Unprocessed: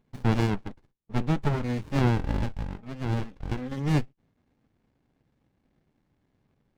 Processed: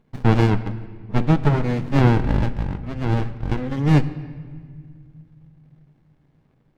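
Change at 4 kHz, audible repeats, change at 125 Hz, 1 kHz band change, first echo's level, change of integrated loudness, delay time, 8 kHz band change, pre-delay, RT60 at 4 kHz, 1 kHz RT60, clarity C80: +5.0 dB, none, +8.5 dB, +7.5 dB, none, +8.0 dB, none, n/a, 6 ms, 1.3 s, 1.7 s, 15.0 dB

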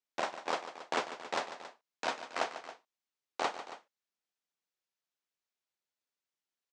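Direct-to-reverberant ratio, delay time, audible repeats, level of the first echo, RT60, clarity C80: none, 0.146 s, 2, -12.0 dB, none, none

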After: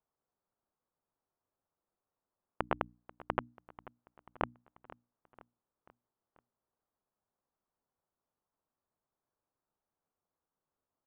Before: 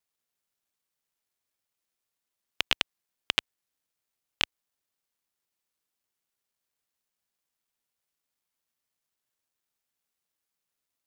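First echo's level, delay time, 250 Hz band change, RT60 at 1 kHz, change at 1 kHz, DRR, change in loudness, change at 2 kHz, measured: -19.0 dB, 0.488 s, +4.5 dB, none, +3.5 dB, none, -9.5 dB, -12.0 dB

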